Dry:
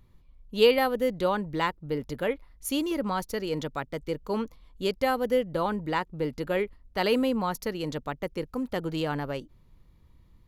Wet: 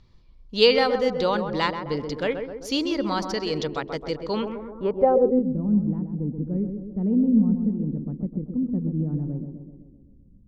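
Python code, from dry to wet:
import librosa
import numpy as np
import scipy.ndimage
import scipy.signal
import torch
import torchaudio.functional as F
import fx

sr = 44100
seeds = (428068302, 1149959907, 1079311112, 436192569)

y = (np.kron(scipy.signal.resample_poly(x, 1, 2), np.eye(2)[0]) * 2)[:len(x)]
y = fx.echo_tape(y, sr, ms=130, feedback_pct=69, wet_db=-5.0, lp_hz=1100.0, drive_db=8.0, wow_cents=26)
y = fx.filter_sweep_lowpass(y, sr, from_hz=5000.0, to_hz=210.0, start_s=4.24, end_s=5.54, q=3.4)
y = F.gain(torch.from_numpy(y), 2.0).numpy()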